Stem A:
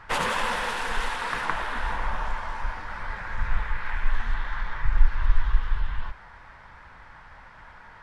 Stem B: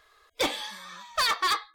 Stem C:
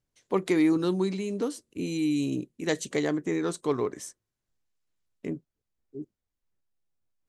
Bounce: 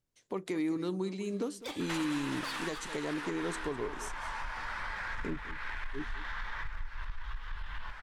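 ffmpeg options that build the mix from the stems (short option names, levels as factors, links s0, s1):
-filter_complex "[0:a]tiltshelf=f=970:g=-5.5,acompressor=threshold=0.0251:ratio=6,asoftclip=type=tanh:threshold=0.0376,adelay=1800,volume=0.944,asplit=2[s0][s1];[s1]volume=0.2[s2];[1:a]acompressor=mode=upward:threshold=0.00891:ratio=2.5,adelay=1250,volume=0.211[s3];[2:a]volume=0.75,asplit=2[s4][s5];[s5]volume=0.158[s6];[s2][s6]amix=inputs=2:normalize=0,aecho=0:1:204:1[s7];[s0][s3][s4][s7]amix=inputs=4:normalize=0,alimiter=level_in=1.12:limit=0.0631:level=0:latency=1:release=467,volume=0.891"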